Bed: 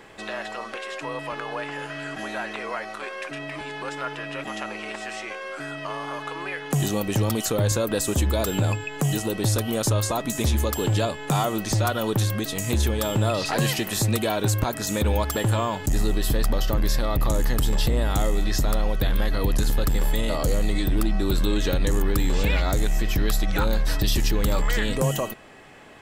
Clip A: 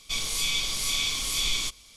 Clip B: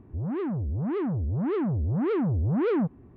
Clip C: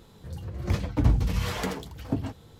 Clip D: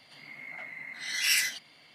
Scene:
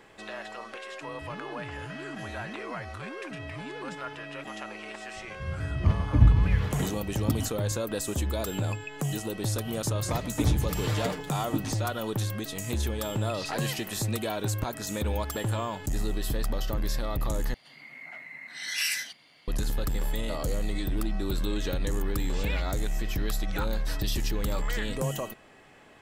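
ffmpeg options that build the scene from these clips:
ffmpeg -i bed.wav -i cue0.wav -i cue1.wav -i cue2.wav -i cue3.wav -filter_complex "[3:a]asplit=2[link_01][link_02];[0:a]volume=-7dB[link_03];[2:a]acompressor=threshold=-33dB:ratio=6:attack=3.2:release=140:knee=1:detection=peak[link_04];[link_01]bass=frequency=250:gain=10,treble=frequency=4000:gain=-12[link_05];[link_02]aecho=1:1:6.7:0.78[link_06];[4:a]alimiter=limit=-15dB:level=0:latency=1:release=269[link_07];[link_03]asplit=2[link_08][link_09];[link_08]atrim=end=17.544[link_10];[link_07]atrim=end=1.94,asetpts=PTS-STARTPTS,volume=-1.5dB[link_11];[link_09]atrim=start=19.476[link_12];[link_04]atrim=end=3.16,asetpts=PTS-STARTPTS,volume=-9dB,afade=type=in:duration=0.004:curve=hsin,afade=type=out:start_time=3.156:duration=0.004:curve=hsin,adelay=1080[link_13];[link_05]atrim=end=2.59,asetpts=PTS-STARTPTS,volume=-6dB,afade=type=in:duration=0.004:curve=hsin,afade=type=out:start_time=2.586:duration=0.004:curve=hsin,adelay=5160[link_14];[link_06]atrim=end=2.59,asetpts=PTS-STARTPTS,volume=-5dB,afade=type=in:duration=0.004:curve=hsin,afade=type=out:start_time=2.586:duration=0.004:curve=hsin,adelay=9410[link_15];[link_10][link_11]acrossfade=duration=0.004:curve1=hsin:curve2=hsin[link_16];[link_16][link_12]acrossfade=duration=0.004:curve1=hsin:curve2=hsin[link_17];[link_17][link_13][link_14][link_15]amix=inputs=4:normalize=0" out.wav

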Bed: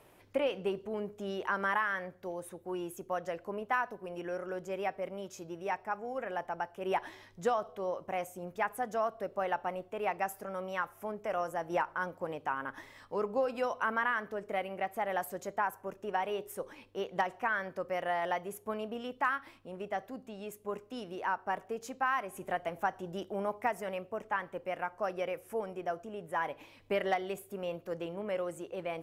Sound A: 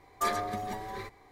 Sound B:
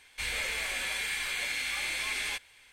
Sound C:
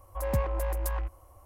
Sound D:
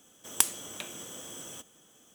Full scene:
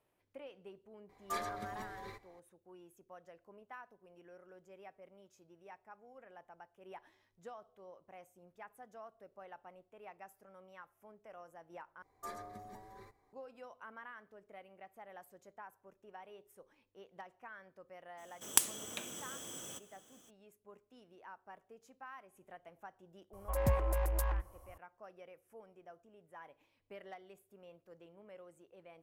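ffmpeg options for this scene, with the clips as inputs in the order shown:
ffmpeg -i bed.wav -i cue0.wav -i cue1.wav -i cue2.wav -i cue3.wav -filter_complex "[1:a]asplit=2[link_01][link_02];[0:a]volume=-19.5dB[link_03];[link_02]equalizer=frequency=3000:width=1.1:gain=-8.5[link_04];[link_03]asplit=2[link_05][link_06];[link_05]atrim=end=12.024[link_07];[link_04]atrim=end=1.31,asetpts=PTS-STARTPTS,volume=-15dB[link_08];[link_06]atrim=start=13.326[link_09];[link_01]atrim=end=1.31,asetpts=PTS-STARTPTS,volume=-9dB,afade=type=in:duration=0.004:curve=hsin,afade=type=out:start_time=1.306:duration=0.004:curve=hsin,adelay=1090[link_10];[4:a]atrim=end=2.14,asetpts=PTS-STARTPTS,volume=-3.5dB,afade=type=in:duration=0.02,afade=type=out:start_time=2.12:duration=0.02,adelay=18170[link_11];[3:a]atrim=end=1.45,asetpts=PTS-STARTPTS,volume=-3dB,afade=type=in:duration=0.004:curve=hsin,afade=type=out:start_time=1.446:duration=0.004:curve=hsin,adelay=23330[link_12];[link_07][link_08]acrossfade=duration=0.004:curve1=hsin:curve2=hsin[link_13];[link_13][link_09]acrossfade=duration=0.004:curve1=hsin:curve2=hsin[link_14];[link_14][link_10][link_11][link_12]amix=inputs=4:normalize=0" out.wav

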